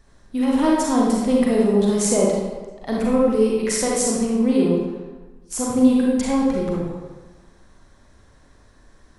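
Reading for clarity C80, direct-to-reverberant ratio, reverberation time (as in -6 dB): 2.0 dB, -4.0 dB, 1.3 s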